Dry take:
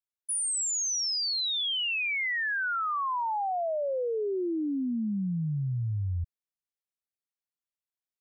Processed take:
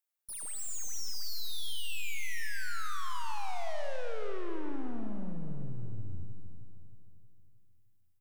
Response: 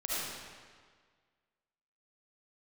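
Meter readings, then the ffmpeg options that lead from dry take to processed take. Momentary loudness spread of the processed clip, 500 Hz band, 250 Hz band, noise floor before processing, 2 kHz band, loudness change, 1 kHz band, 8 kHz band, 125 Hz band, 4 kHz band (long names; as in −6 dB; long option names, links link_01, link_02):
7 LU, −10.0 dB, −10.5 dB, below −85 dBFS, −11.0 dB, −11.0 dB, −10.5 dB, −11.0 dB, −11.5 dB, −12.0 dB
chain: -filter_complex "[0:a]crystalizer=i=2.5:c=0,bass=frequency=250:gain=-13,treble=frequency=4000:gain=-8,aeval=exprs='(tanh(158*val(0)+0.45)-tanh(0.45))/158':channel_layout=same,equalizer=frequency=3800:width_type=o:width=1.7:gain=-2.5,aecho=1:1:313|626|939|1252|1565|1878:0.251|0.136|0.0732|0.0396|0.0214|0.0115,asplit=2[link_01][link_02];[1:a]atrim=start_sample=2205[link_03];[link_02][link_03]afir=irnorm=-1:irlink=0,volume=-7.5dB[link_04];[link_01][link_04]amix=inputs=2:normalize=0,volume=1dB"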